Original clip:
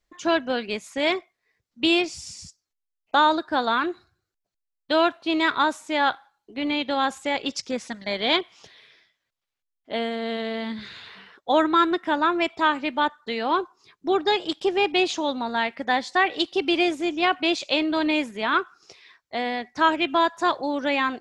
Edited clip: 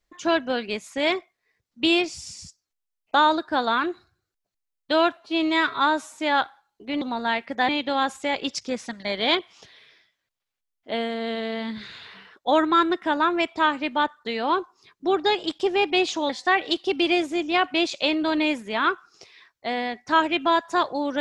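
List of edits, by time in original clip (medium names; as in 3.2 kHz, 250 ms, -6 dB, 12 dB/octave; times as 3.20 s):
5.17–5.80 s: stretch 1.5×
15.31–15.98 s: move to 6.70 s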